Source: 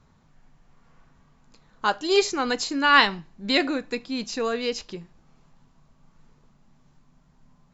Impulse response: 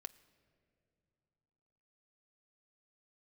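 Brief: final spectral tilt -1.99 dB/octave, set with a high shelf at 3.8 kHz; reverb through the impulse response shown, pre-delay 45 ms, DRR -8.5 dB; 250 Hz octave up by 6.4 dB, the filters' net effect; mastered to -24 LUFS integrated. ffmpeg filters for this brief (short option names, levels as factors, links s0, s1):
-filter_complex "[0:a]equalizer=f=250:t=o:g=7.5,highshelf=f=3800:g=-3,asplit=2[s0][s1];[1:a]atrim=start_sample=2205,adelay=45[s2];[s1][s2]afir=irnorm=-1:irlink=0,volume=5.01[s3];[s0][s3]amix=inputs=2:normalize=0,volume=0.266"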